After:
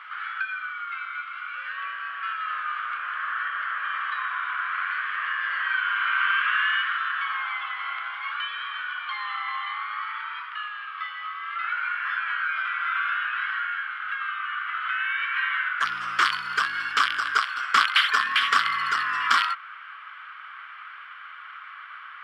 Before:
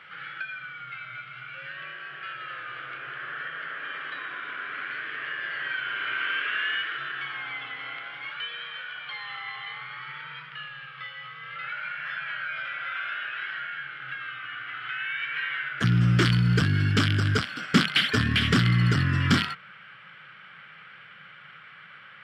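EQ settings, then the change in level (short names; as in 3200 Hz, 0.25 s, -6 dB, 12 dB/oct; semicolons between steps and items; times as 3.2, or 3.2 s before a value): resonant high-pass 1100 Hz, resonance Q 4.9; 0.0 dB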